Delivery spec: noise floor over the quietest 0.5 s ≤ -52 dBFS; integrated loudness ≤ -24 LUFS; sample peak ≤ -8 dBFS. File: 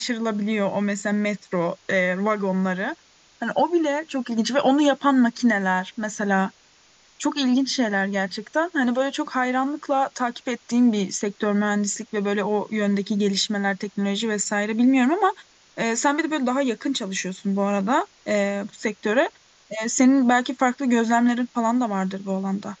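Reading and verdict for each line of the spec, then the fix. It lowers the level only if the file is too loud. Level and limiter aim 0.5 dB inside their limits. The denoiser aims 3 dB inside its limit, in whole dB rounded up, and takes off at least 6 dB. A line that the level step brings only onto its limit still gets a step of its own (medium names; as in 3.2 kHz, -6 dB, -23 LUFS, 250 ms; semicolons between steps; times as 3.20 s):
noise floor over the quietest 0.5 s -56 dBFS: pass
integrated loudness -23.0 LUFS: fail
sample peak -6.0 dBFS: fail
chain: trim -1.5 dB; peak limiter -8.5 dBFS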